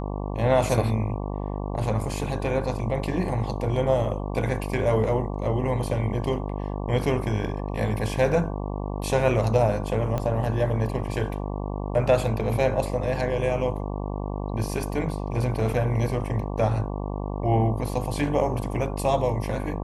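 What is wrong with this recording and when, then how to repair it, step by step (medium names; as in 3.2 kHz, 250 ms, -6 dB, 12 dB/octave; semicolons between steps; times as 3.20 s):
buzz 50 Hz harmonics 23 -30 dBFS
10.18 s: pop -15 dBFS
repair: de-click; de-hum 50 Hz, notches 23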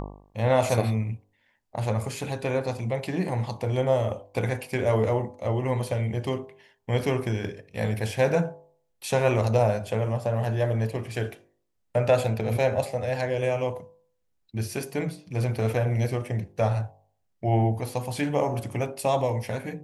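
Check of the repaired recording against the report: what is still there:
10.18 s: pop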